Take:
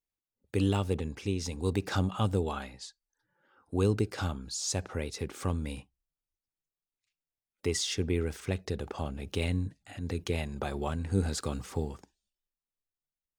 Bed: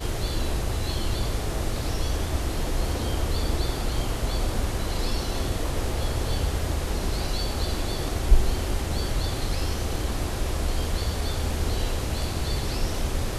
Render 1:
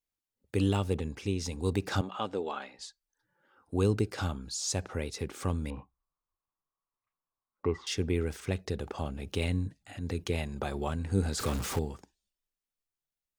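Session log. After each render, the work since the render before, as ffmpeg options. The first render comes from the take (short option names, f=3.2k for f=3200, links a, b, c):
-filter_complex "[0:a]asettb=1/sr,asplit=3[a][b][c];[a]atrim=end=2.014[d];[b]atrim=start=2.01:end=2.79,asetpts=PTS-STARTPTS,afade=t=in:d=0.004:c=qsin,afade=t=out:st=0.776:d=0.004:c=qsin,highpass=340,lowpass=4.3k[e];[c]atrim=start=2.786[f];[d][e]acrossfade=d=0.004:c1=hsin:c2=qsin[g];[g][f]acrossfade=d=0.004:c1=qsin:c2=hsin,asettb=1/sr,asplit=3[h][i][j];[h]atrim=end=5.704[k];[i]atrim=start=5.7:end=7.87,asetpts=PTS-STARTPTS,afade=t=in:d=0.004:c=qsin,afade=t=out:st=2.166:d=0.004:c=qsin,lowpass=f=1.1k:t=q:w=6.8[l];[j]atrim=start=7.866[m];[k][l]acrossfade=d=0.004:c1=hsin:c2=qsin[n];[n][m]acrossfade=d=0.004:c1=qsin:c2=hsin,asettb=1/sr,asplit=3[o][p][q];[o]atrim=end=11.394[r];[p]atrim=start=11.39:end=11.79,asetpts=PTS-STARTPTS,afade=t=in:d=0.004:c=qsin,afade=t=out:st=0.396:d=0.004:c=qsin,aeval=exprs='val(0)+0.5*0.0237*sgn(val(0))':c=same[s];[q]atrim=start=11.786[t];[r][s]acrossfade=d=0.004:c1=hsin:c2=qsin[u];[u][t]acrossfade=d=0.004:c1=qsin:c2=hsin"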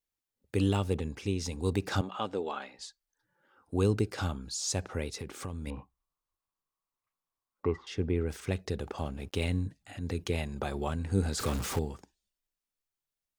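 -filter_complex "[0:a]asettb=1/sr,asplit=3[a][b][c];[a]atrim=end=5.204[d];[b]atrim=start=5.2:end=5.67,asetpts=PTS-STARTPTS,afade=t=in:d=0.004:c=qsin,afade=t=out:st=0.466:d=0.004:c=qsin,acompressor=threshold=-35dB:ratio=3:attack=3.2:release=140:knee=1:detection=peak[e];[c]atrim=start=5.666[f];[d][e]acrossfade=d=0.004:c1=hsin:c2=qsin[g];[g][f]acrossfade=d=0.004:c1=qsin:c2=hsin,asplit=3[h][i][j];[h]afade=t=out:st=7.75:d=0.02[k];[i]lowpass=f=1.5k:p=1,afade=t=in:st=7.75:d=0.02,afade=t=out:st=8.28:d=0.02[l];[j]afade=t=in:st=8.28:d=0.02[m];[k][l][m]amix=inputs=3:normalize=0,asettb=1/sr,asplit=3[n][o][p];[n]atrim=end=8.974[q];[o]atrim=start=8.97:end=9.61,asetpts=PTS-STARTPTS,afade=t=in:d=0.004:c=qsin,afade=t=out:st=0.636:d=0.004:c=qsin,aeval=exprs='sgn(val(0))*max(abs(val(0))-0.00119,0)':c=same[r];[p]atrim=start=9.606[s];[q][r]acrossfade=d=0.004:c1=hsin:c2=qsin[t];[t][s]acrossfade=d=0.004:c1=qsin:c2=hsin"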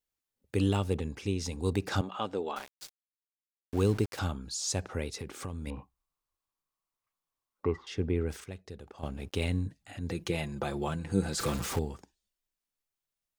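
-filter_complex "[0:a]asettb=1/sr,asplit=3[a][b][c];[a]atrim=end=2.564[d];[b]atrim=start=2.56:end=4.19,asetpts=PTS-STARTPTS,afade=t=in:d=0.004:c=qsin,afade=t=out:st=1.626:d=0.004:c=qsin,aeval=exprs='val(0)*gte(abs(val(0)),0.01)':c=same[e];[c]atrim=start=4.186[f];[d][e]acrossfade=d=0.004:c1=hsin:c2=qsin[g];[g][f]acrossfade=d=0.004:c1=qsin:c2=hsin,asettb=1/sr,asplit=3[h][i][j];[h]atrim=end=10.104[k];[i]atrim=start=10.1:end=11.64,asetpts=PTS-STARTPTS,afade=t=in:d=0.004:c=qsin,afade=t=out:st=1.536:d=0.004:c=qsin,aecho=1:1:5.9:0.56,atrim=end_sample=67914[l];[j]atrim=start=11.636[m];[k][l]acrossfade=d=0.004:c1=hsin:c2=qsin[n];[n][m]acrossfade=d=0.004:c1=qsin:c2=hsin,asplit=3[o][p][q];[o]atrim=end=8.442[r];[p]atrim=start=8.438:end=9.032,asetpts=PTS-STARTPTS,volume=-11dB[s];[q]atrim=start=9.028[t];[r][s]acrossfade=d=0.004:c1=hsin:c2=hsin[u];[u][t]acrossfade=d=0.004:c1=hsin:c2=hsin"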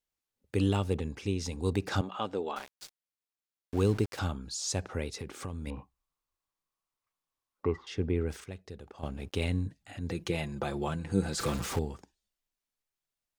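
-af "highshelf=f=9.9k:g=-4.5"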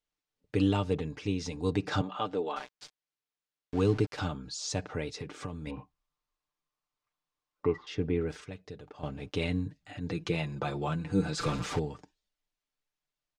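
-af "lowpass=5.8k,aecho=1:1:6.7:0.55"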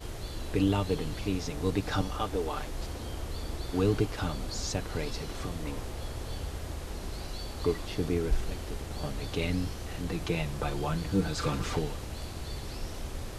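-filter_complex "[1:a]volume=-11dB[a];[0:a][a]amix=inputs=2:normalize=0"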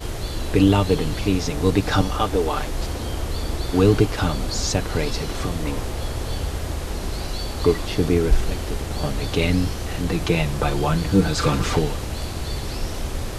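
-af "volume=10.5dB"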